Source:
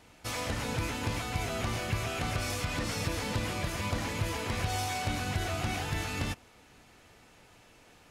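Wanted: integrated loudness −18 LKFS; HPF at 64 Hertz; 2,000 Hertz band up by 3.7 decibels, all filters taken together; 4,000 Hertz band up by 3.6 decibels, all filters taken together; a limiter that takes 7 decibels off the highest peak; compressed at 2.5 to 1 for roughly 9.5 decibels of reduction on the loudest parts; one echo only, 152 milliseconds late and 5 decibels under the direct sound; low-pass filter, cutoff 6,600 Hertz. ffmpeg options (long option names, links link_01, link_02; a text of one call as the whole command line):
ffmpeg -i in.wav -af "highpass=64,lowpass=6600,equalizer=frequency=2000:width_type=o:gain=3.5,equalizer=frequency=4000:width_type=o:gain=4,acompressor=threshold=-42dB:ratio=2.5,alimiter=level_in=8.5dB:limit=-24dB:level=0:latency=1,volume=-8.5dB,aecho=1:1:152:0.562,volume=22.5dB" out.wav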